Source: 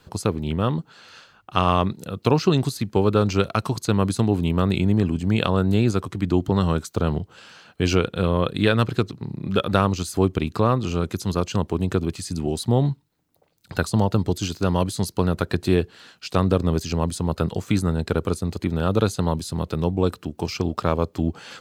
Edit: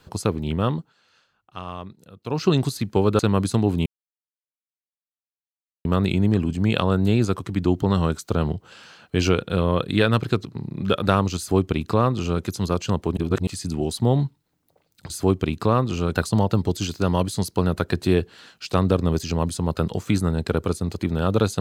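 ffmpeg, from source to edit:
ffmpeg -i in.wav -filter_complex "[0:a]asplit=9[link_01][link_02][link_03][link_04][link_05][link_06][link_07][link_08][link_09];[link_01]atrim=end=0.93,asetpts=PTS-STARTPTS,afade=type=out:start_time=0.7:duration=0.23:silence=0.177828[link_10];[link_02]atrim=start=0.93:end=2.26,asetpts=PTS-STARTPTS,volume=-15dB[link_11];[link_03]atrim=start=2.26:end=3.192,asetpts=PTS-STARTPTS,afade=type=in:duration=0.23:silence=0.177828[link_12];[link_04]atrim=start=3.838:end=4.51,asetpts=PTS-STARTPTS,afade=type=out:start_time=0.668:duration=0.004:curve=hsin,apad=pad_dur=1.99[link_13];[link_05]atrim=start=4.51:end=11.832,asetpts=PTS-STARTPTS,afade=type=in:duration=0.004:curve=hsin[link_14];[link_06]atrim=start=11.828:end=12.132,asetpts=PTS-STARTPTS,areverse[link_15];[link_07]atrim=start=12.128:end=13.762[link_16];[link_08]atrim=start=10.038:end=11.092[link_17];[link_09]atrim=start=13.758[link_18];[link_10][link_11][link_12]concat=n=3:v=0:a=1[link_19];[link_13][link_14]concat=n=2:v=0:a=1[link_20];[link_19][link_20]acrossfade=duration=0.004:curve1=hsin:curve2=hsin[link_21];[link_21][link_15]acrossfade=duration=0.004:curve1=hsin:curve2=hsin[link_22];[link_22][link_16]acrossfade=duration=0.004:curve1=hsin:curve2=hsin[link_23];[link_23][link_17]acrossfade=duration=0.004:curve1=hsin:curve2=hsin[link_24];[link_24][link_18]acrossfade=duration=0.004:curve1=hsin:curve2=hsin" out.wav

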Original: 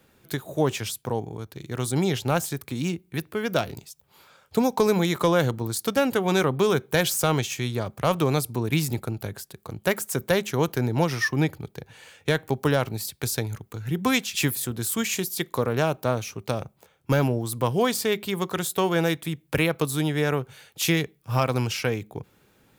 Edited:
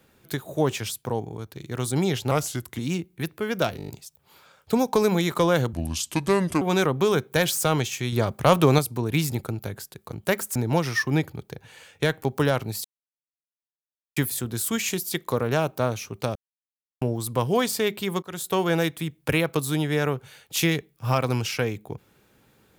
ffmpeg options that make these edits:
ffmpeg -i in.wav -filter_complex "[0:a]asplit=18[link_01][link_02][link_03][link_04][link_05][link_06][link_07][link_08][link_09][link_10][link_11][link_12][link_13][link_14][link_15][link_16][link_17][link_18];[link_01]atrim=end=2.314[link_19];[link_02]atrim=start=2.31:end=2.73,asetpts=PTS-STARTPTS,asetrate=38808,aresample=44100[link_20];[link_03]atrim=start=2.726:end=3.742[link_21];[link_04]atrim=start=3.718:end=3.742[link_22];[link_05]atrim=start=3.718:end=3.742[link_23];[link_06]atrim=start=3.718:end=3.742[link_24];[link_07]atrim=start=3.718:end=3.742[link_25];[link_08]atrim=start=3.718:end=5.574[link_26];[link_09]atrim=start=5.57:end=6.2,asetpts=PTS-STARTPTS,asetrate=31311,aresample=44100[link_27];[link_10]atrim=start=6.196:end=7.712[link_28];[link_11]atrim=start=7.708:end=8.372,asetpts=PTS-STARTPTS,volume=5dB[link_29];[link_12]atrim=start=8.368:end=10.142[link_30];[link_13]atrim=start=10.808:end=13.1,asetpts=PTS-STARTPTS,afade=type=out:start_time=2.288:duration=0.004:curve=hsin[link_31];[link_14]atrim=start=13.1:end=14.42,asetpts=PTS-STARTPTS,volume=0[link_32];[link_15]atrim=start=14.42:end=16.61,asetpts=PTS-STARTPTS,afade=type=in:duration=0.004:curve=hsin,afade=type=out:start_time=2.186:duration=0.004:curve=hsin[link_33];[link_16]atrim=start=16.61:end=17.27,asetpts=PTS-STARTPTS,volume=0[link_34];[link_17]atrim=start=17.27:end=18.48,asetpts=PTS-STARTPTS,afade=type=in:duration=0.004:curve=hsin,afade=type=out:start_time=1.206:duration=0.004:curve=hsin:silence=0.0707946[link_35];[link_18]atrim=start=18.48,asetpts=PTS-STARTPTS,afade=type=in:duration=0.42:curve=qsin:silence=0.0707946[link_36];[link_19][link_20]acrossfade=duration=0.004:curve1=hsin:curve2=hsin[link_37];[link_37][link_21]acrossfade=duration=0.004:curve1=hsin:curve2=hsin[link_38];[link_38][link_22]acrossfade=duration=0.004:curve1=hsin:curve2=hsin[link_39];[link_39][link_23]acrossfade=duration=0.004:curve1=hsin:curve2=hsin[link_40];[link_40][link_24]acrossfade=duration=0.004:curve1=hsin:curve2=hsin[link_41];[link_41][link_25]acrossfade=duration=0.004:curve1=hsin:curve2=hsin[link_42];[link_42][link_26]acrossfade=duration=0.004:curve1=hsin:curve2=hsin[link_43];[link_43][link_27]acrossfade=duration=0.004:curve1=hsin:curve2=hsin[link_44];[link_44][link_28]acrossfade=duration=0.004:curve1=hsin:curve2=hsin[link_45];[link_45][link_29]acrossfade=duration=0.004:curve1=hsin:curve2=hsin[link_46];[link_46][link_30]acrossfade=duration=0.004:curve1=hsin:curve2=hsin[link_47];[link_31][link_32][link_33][link_34][link_35][link_36]concat=n=6:v=0:a=1[link_48];[link_47][link_48]acrossfade=duration=0.004:curve1=hsin:curve2=hsin" out.wav

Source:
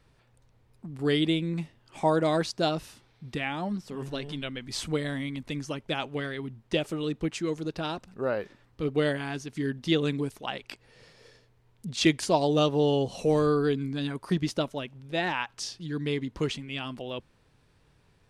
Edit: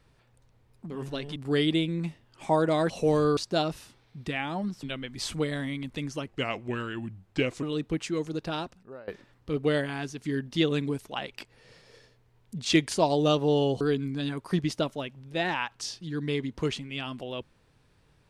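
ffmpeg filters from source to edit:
ffmpeg -i in.wav -filter_complex "[0:a]asplit=10[link_01][link_02][link_03][link_04][link_05][link_06][link_07][link_08][link_09][link_10];[link_01]atrim=end=0.902[link_11];[link_02]atrim=start=3.898:end=4.362[link_12];[link_03]atrim=start=0.898:end=2.442[link_13];[link_04]atrim=start=13.118:end=13.592[link_14];[link_05]atrim=start=2.438:end=3.902[link_15];[link_06]atrim=start=4.358:end=5.804[link_16];[link_07]atrim=start=5.8:end=6.94,asetpts=PTS-STARTPTS,asetrate=37044,aresample=44100[link_17];[link_08]atrim=start=6.936:end=8.39,asetpts=PTS-STARTPTS,afade=type=out:start_time=0.994:duration=0.46:curve=qua:silence=0.105925[link_18];[link_09]atrim=start=8.39:end=13.122,asetpts=PTS-STARTPTS,afade=type=in:duration=0.004:curve=hsin:silence=0.105925[link_19];[link_10]atrim=start=13.588[link_20];[link_11][link_12]acrossfade=duration=0.004:curve1=hsin:curve2=hsin[link_21];[link_21][link_13]acrossfade=duration=0.004:curve1=hsin:curve2=hsin[link_22];[link_22][link_14]acrossfade=duration=0.004:curve1=hsin:curve2=hsin[link_23];[link_23][link_15]acrossfade=duration=0.004:curve1=hsin:curve2=hsin[link_24];[link_24][link_16]acrossfade=duration=0.004:curve1=hsin:curve2=hsin[link_25];[link_25][link_17]acrossfade=duration=0.004:curve1=hsin:curve2=hsin[link_26];[link_18][link_19]concat=n=2:v=0:a=1[link_27];[link_26][link_27]acrossfade=duration=0.004:curve1=hsin:curve2=hsin[link_28];[link_28][link_20]acrossfade=duration=0.004:curve1=hsin:curve2=hsin" out.wav

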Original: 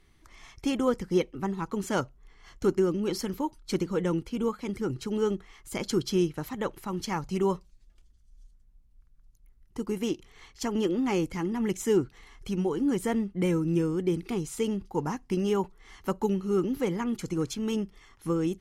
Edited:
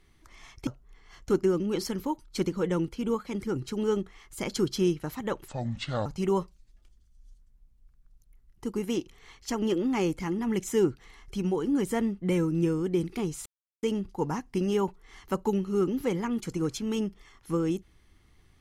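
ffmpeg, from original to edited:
ffmpeg -i in.wav -filter_complex "[0:a]asplit=5[link_01][link_02][link_03][link_04][link_05];[link_01]atrim=end=0.672[link_06];[link_02]atrim=start=2.008:end=6.824[link_07];[link_03]atrim=start=6.82:end=7.19,asetpts=PTS-STARTPTS,asetrate=28224,aresample=44100,atrim=end_sample=25495,asetpts=PTS-STARTPTS[link_08];[link_04]atrim=start=7.186:end=14.59,asetpts=PTS-STARTPTS,afade=type=out:start_time=7.4:duration=0.004:curve=hsin,apad=pad_dur=0.37[link_09];[link_05]atrim=start=14.59,asetpts=PTS-STARTPTS,afade=type=in:duration=0.004:curve=hsin[link_10];[link_06][link_07]acrossfade=duration=0.004:curve1=hsin:curve2=hsin[link_11];[link_11][link_08]acrossfade=duration=0.004:curve1=hsin:curve2=hsin[link_12];[link_09][link_10]concat=n=2:v=0:a=1[link_13];[link_12][link_13]acrossfade=duration=0.004:curve1=hsin:curve2=hsin" out.wav

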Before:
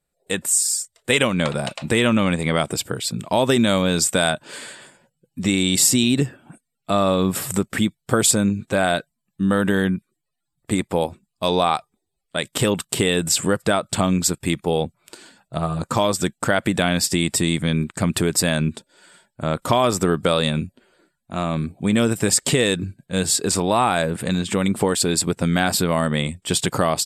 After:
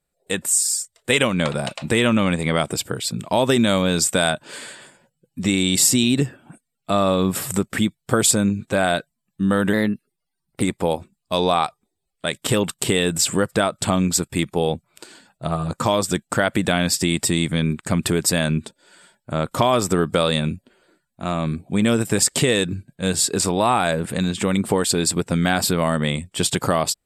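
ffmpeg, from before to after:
ffmpeg -i in.wav -filter_complex "[0:a]asplit=3[link_01][link_02][link_03];[link_01]atrim=end=9.734[link_04];[link_02]atrim=start=9.73:end=10.73,asetpts=PTS-STARTPTS,asetrate=49392,aresample=44100[link_05];[link_03]atrim=start=10.726[link_06];[link_04][link_05]acrossfade=duration=0.004:curve1=hsin:curve2=hsin[link_07];[link_07][link_06]acrossfade=duration=0.004:curve1=hsin:curve2=hsin" out.wav

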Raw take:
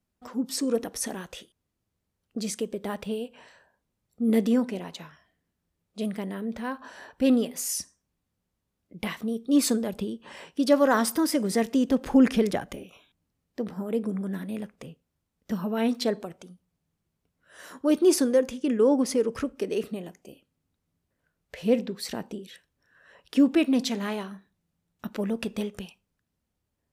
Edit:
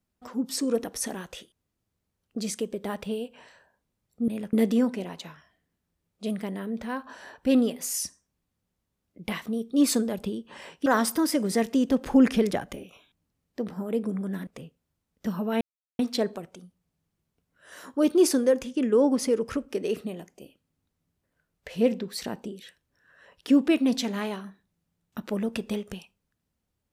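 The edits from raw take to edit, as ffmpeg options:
ffmpeg -i in.wav -filter_complex "[0:a]asplit=6[link_01][link_02][link_03][link_04][link_05][link_06];[link_01]atrim=end=4.282[link_07];[link_02]atrim=start=14.468:end=14.722[link_08];[link_03]atrim=start=4.278:end=10.612[link_09];[link_04]atrim=start=10.858:end=14.472[link_10];[link_05]atrim=start=14.718:end=15.86,asetpts=PTS-STARTPTS,afade=type=out:start_time=1.138:duration=0.004:curve=hsin,apad=pad_dur=0.38[link_11];[link_06]atrim=start=15.86,asetpts=PTS-STARTPTS,afade=type=in:duration=0.004:curve=hsin[link_12];[link_07][link_08]acrossfade=duration=0.004:curve1=hsin:curve2=hsin[link_13];[link_13][link_09]acrossfade=duration=0.004:curve1=hsin:curve2=hsin[link_14];[link_14][link_10]acrossfade=duration=0.004:curve1=hsin:curve2=hsin[link_15];[link_11][link_12]concat=n=2:v=0:a=1[link_16];[link_15][link_16]acrossfade=duration=0.004:curve1=hsin:curve2=hsin" out.wav

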